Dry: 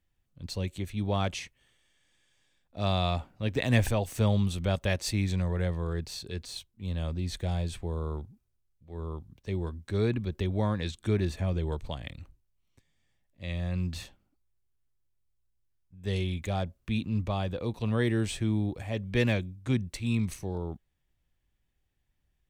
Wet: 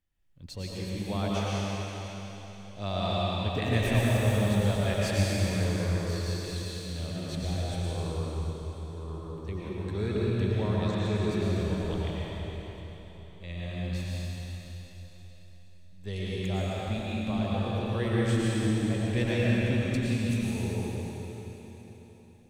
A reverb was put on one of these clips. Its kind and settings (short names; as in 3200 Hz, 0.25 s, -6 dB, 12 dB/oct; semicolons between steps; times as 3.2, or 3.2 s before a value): digital reverb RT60 4 s, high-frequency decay 1×, pre-delay 70 ms, DRR -6.5 dB; gain -5.5 dB